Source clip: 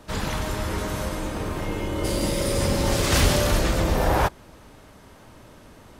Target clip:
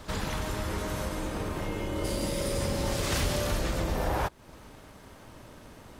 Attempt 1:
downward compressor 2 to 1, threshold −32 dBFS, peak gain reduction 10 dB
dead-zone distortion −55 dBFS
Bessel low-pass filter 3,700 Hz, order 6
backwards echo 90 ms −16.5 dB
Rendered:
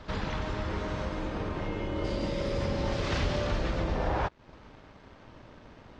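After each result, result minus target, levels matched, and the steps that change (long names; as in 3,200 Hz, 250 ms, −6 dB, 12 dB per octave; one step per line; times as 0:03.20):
dead-zone distortion: distortion +7 dB; 4,000 Hz band −2.5 dB
change: dead-zone distortion −62 dBFS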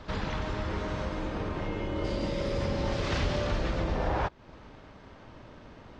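4,000 Hz band −2.5 dB
remove: Bessel low-pass filter 3,700 Hz, order 6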